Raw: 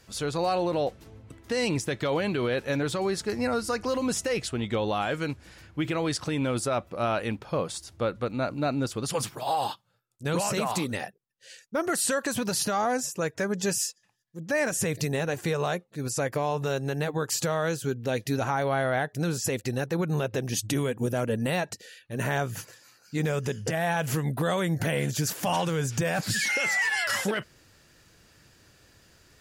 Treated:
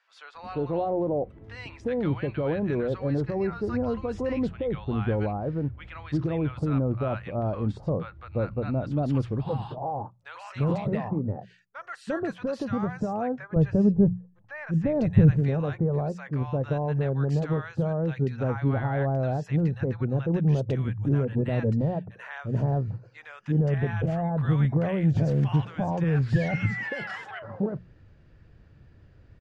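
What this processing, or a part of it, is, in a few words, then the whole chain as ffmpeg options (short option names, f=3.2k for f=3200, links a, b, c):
phone in a pocket: -filter_complex "[0:a]asettb=1/sr,asplit=3[a][b][c];[a]atrim=end=13.214[d];[b]atrim=start=13.21:end=14.96,asetpts=PTS-STARTPTS,afade=t=in:d=0.004:c=qsin,afade=t=out:st=1.746:d=0.004:c=qsin,aemphasis=mode=reproduction:type=riaa[e];[c]atrim=start=14.956[f];[d][e]acrossfade=d=0.004:c1=hsin:c2=qsin[g];[g][f]acrossfade=d=0.004:c1=qsin:c2=hsin,lowpass=3.1k,equalizer=f=300:t=o:w=2.2:g=4.5,highshelf=f=2.1k:g=-12,bandreject=f=60:t=h:w=6,bandreject=f=120:t=h:w=6,bandreject=f=180:t=h:w=6,asubboost=boost=4.5:cutoff=130,acrossover=split=1000[h][i];[h]adelay=350[j];[j][i]amix=inputs=2:normalize=0,volume=-1dB"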